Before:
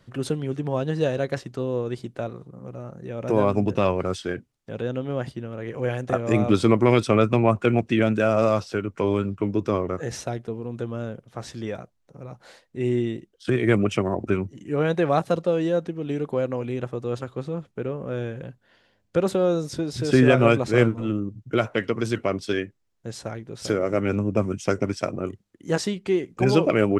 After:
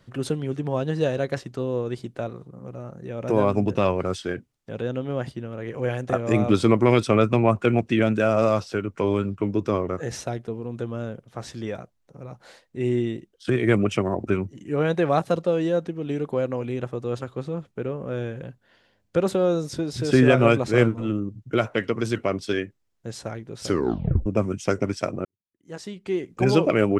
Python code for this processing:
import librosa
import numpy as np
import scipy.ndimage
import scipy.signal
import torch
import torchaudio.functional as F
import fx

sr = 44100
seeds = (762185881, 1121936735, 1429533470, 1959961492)

y = fx.edit(x, sr, fx.tape_stop(start_s=23.67, length_s=0.59),
    fx.fade_in_span(start_s=25.25, length_s=1.09, curve='qua'), tone=tone)